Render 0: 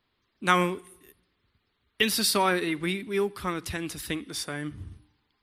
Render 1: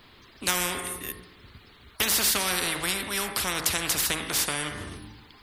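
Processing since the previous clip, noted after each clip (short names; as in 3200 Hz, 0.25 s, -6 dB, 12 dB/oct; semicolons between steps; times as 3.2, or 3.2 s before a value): de-hum 53.69 Hz, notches 40; spectral compressor 4:1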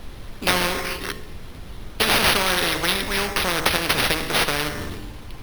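bell 500 Hz +4 dB; sample-and-hold 6×; added noise brown -40 dBFS; gain +5.5 dB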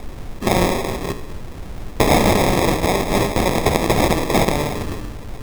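in parallel at -1.5 dB: limiter -11 dBFS, peak gain reduction 9.5 dB; on the sum: sample-and-hold 30×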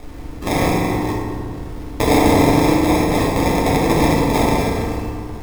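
FDN reverb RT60 2.1 s, low-frequency decay 1.35×, high-frequency decay 0.45×, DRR -3.5 dB; gain -5 dB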